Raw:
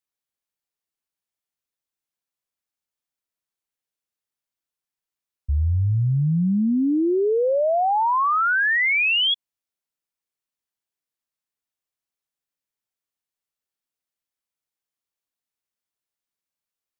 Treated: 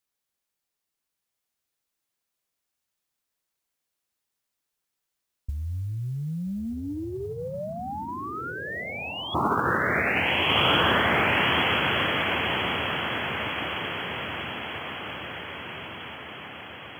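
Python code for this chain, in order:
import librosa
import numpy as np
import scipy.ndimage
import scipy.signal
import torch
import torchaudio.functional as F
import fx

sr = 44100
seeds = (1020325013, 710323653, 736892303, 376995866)

y = fx.echo_diffused(x, sr, ms=1318, feedback_pct=57, wet_db=-4.5)
y = fx.over_compress(y, sr, threshold_db=-25.0, ratio=-0.5)
y = fx.mod_noise(y, sr, seeds[0], snr_db=32)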